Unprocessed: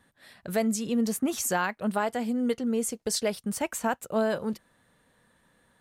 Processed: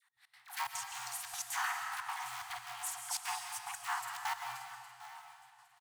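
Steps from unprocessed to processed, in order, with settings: cycle switcher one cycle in 3, inverted; doubling 50 ms -4 dB; on a send: feedback delay 812 ms, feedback 31%, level -16.5 dB; on the sum: frequency shift +120 Hz; bass shelf 92 Hz +12 dB; phase dispersion lows, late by 100 ms, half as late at 690 Hz; trance gate "x.x.xxxx.x.xxx" 180 bpm -24 dB; FFT band-reject 130–710 Hz; dynamic bell 780 Hz, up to -5 dB, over -45 dBFS, Q 5.6; algorithmic reverb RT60 1.9 s, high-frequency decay 0.95×, pre-delay 95 ms, DRR 4 dB; trim -8 dB

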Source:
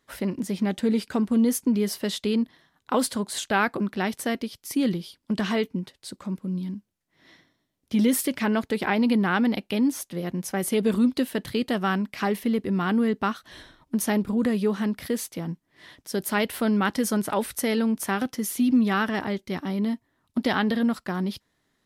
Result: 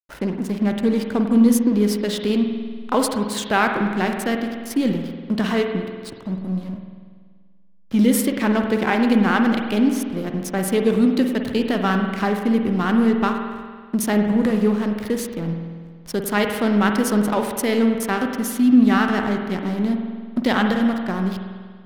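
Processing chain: hysteresis with a dead band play -33 dBFS; spring tank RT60 1.7 s, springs 48 ms, chirp 60 ms, DRR 4 dB; trim +4 dB

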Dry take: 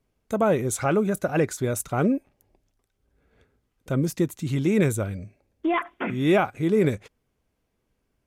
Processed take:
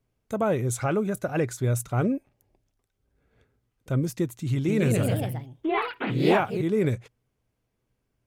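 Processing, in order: 4.52–6.69 s: ever faster or slower copies 166 ms, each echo +2 st, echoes 3; peaking EQ 120 Hz +11 dB 0.21 oct; trim -3.5 dB

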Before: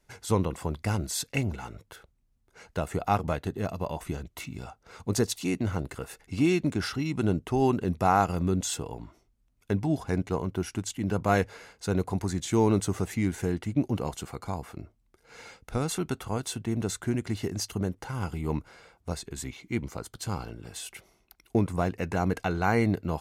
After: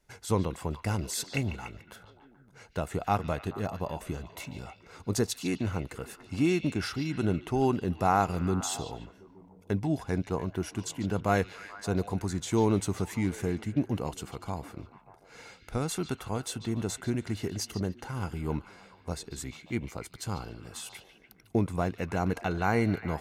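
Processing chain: repeats whose band climbs or falls 145 ms, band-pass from 3.5 kHz, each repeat -0.7 oct, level -8 dB; trim -2 dB

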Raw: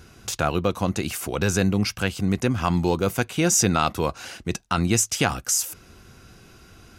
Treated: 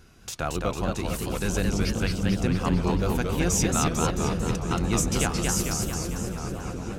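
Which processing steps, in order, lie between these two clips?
octave divider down 2 oct, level -3 dB; delay with an opening low-pass 653 ms, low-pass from 200 Hz, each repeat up 1 oct, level -3 dB; modulated delay 223 ms, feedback 61%, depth 183 cents, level -3 dB; trim -6.5 dB

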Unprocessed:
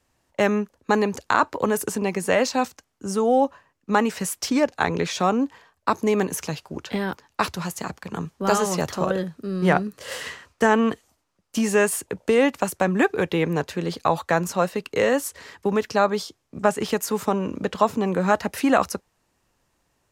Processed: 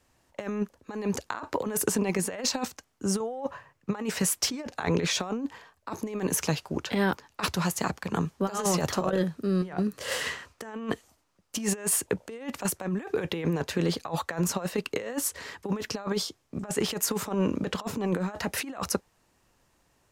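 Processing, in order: compressor with a negative ratio -25 dBFS, ratio -0.5; 3.20–3.96 s: graphic EQ 125/250/500/1000/2000 Hz +11/-5/+4/+3/+4 dB; trim -2.5 dB

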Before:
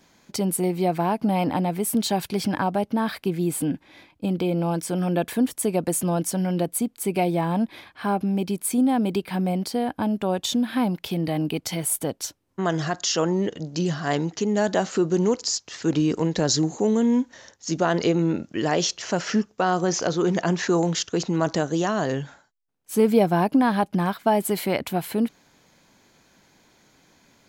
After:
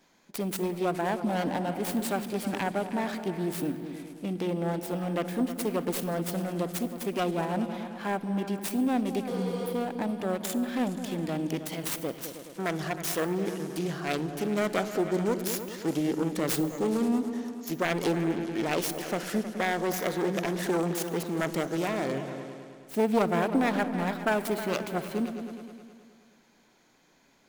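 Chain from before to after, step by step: self-modulated delay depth 0.41 ms; on a send at -21 dB: treble shelf 10 kHz +11.5 dB + reverberation RT60 0.85 s, pre-delay 45 ms; on the sum: spectral replace 9.30–9.70 s, 310–9400 Hz after; in parallel at -12 dB: sample-rate reducer 8.6 kHz; on the sum: peaking EQ 83 Hz -10.5 dB 1.8 oct; delay with an opening low-pass 105 ms, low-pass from 200 Hz, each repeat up 2 oct, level -6 dB; trim -6.5 dB

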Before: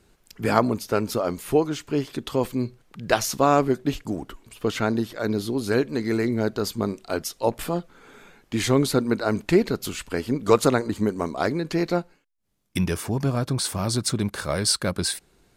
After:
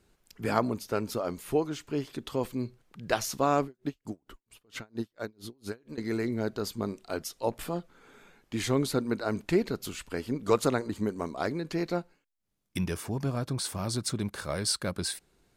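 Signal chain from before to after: 3.64–5.98 s: logarithmic tremolo 4.4 Hz, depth 37 dB; trim -7 dB

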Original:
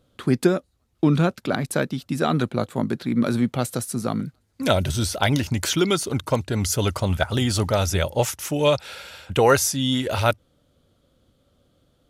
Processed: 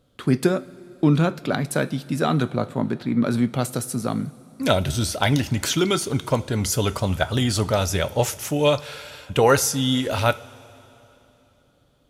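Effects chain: 2.47–3.31 s: treble shelf 5 kHz -9.5 dB; two-slope reverb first 0.26 s, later 3.2 s, from -18 dB, DRR 11.5 dB

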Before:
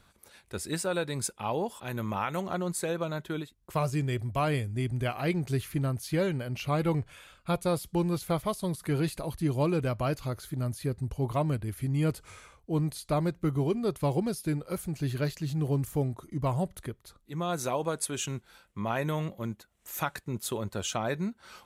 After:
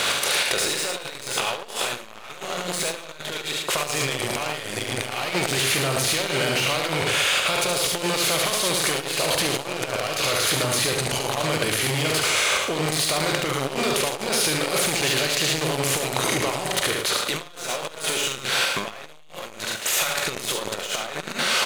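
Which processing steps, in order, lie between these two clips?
spectral levelling over time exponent 0.6; frequency weighting D; peak limiter -14.5 dBFS, peak gain reduction 8 dB; waveshaping leveller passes 3; resonant low shelf 380 Hz -6.5 dB, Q 1.5; level held to a coarse grid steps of 16 dB; doubling 45 ms -11.5 dB; loudspeakers at several distances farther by 25 m -4 dB, 38 m -6 dB, 76 m -12 dB; transformer saturation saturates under 950 Hz; trim +8.5 dB

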